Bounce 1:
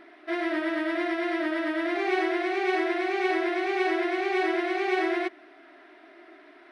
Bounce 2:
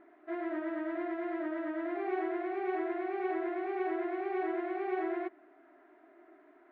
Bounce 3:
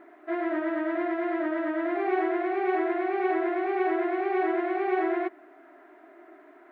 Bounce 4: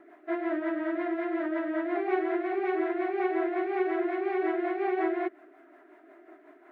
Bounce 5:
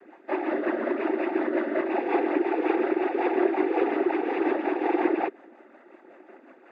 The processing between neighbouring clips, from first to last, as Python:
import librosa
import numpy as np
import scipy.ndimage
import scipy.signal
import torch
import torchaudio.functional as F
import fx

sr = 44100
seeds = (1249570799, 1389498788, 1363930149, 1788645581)

y1 = scipy.signal.sosfilt(scipy.signal.butter(2, 1300.0, 'lowpass', fs=sr, output='sos'), x)
y1 = F.gain(torch.from_numpy(y1), -7.0).numpy()
y2 = fx.low_shelf(y1, sr, hz=170.0, db=-9.5)
y2 = F.gain(torch.from_numpy(y2), 9.0).numpy()
y3 = fx.rotary(y2, sr, hz=5.5)
y4 = fx.noise_vocoder(y3, sr, seeds[0], bands=16)
y4 = F.gain(torch.from_numpy(y4), 4.0).numpy()